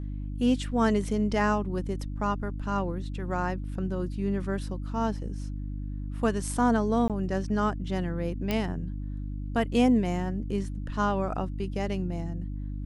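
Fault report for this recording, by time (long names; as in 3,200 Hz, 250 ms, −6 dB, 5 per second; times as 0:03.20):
mains hum 50 Hz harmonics 6 −34 dBFS
0:07.08–0:07.10: drop-out 17 ms
0:08.51: click −14 dBFS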